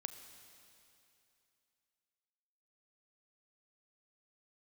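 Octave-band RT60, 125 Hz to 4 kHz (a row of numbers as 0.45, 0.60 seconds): 2.8, 2.8, 2.8, 2.8, 2.8, 2.8 seconds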